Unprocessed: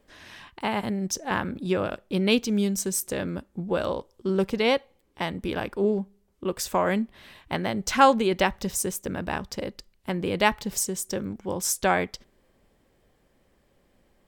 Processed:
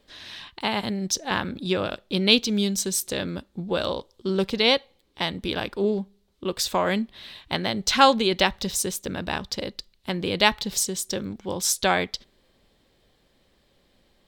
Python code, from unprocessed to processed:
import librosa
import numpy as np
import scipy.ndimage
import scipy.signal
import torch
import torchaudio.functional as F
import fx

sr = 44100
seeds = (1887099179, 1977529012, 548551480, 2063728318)

y = fx.peak_eq(x, sr, hz=3900.0, db=13.0, octaves=0.84)